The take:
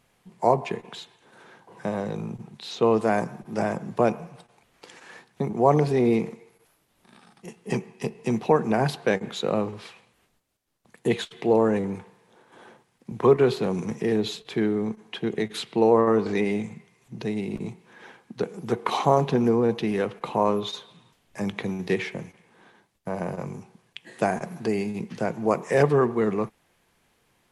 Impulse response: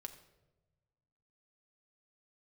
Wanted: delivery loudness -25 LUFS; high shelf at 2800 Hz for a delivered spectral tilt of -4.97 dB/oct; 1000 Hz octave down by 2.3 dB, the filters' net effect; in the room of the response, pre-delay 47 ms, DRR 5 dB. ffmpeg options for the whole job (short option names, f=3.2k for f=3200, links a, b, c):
-filter_complex "[0:a]equalizer=f=1k:t=o:g=-4,highshelf=f=2.8k:g=7.5,asplit=2[a][b];[1:a]atrim=start_sample=2205,adelay=47[c];[b][c]afir=irnorm=-1:irlink=0,volume=-0.5dB[d];[a][d]amix=inputs=2:normalize=0,volume=-0.5dB"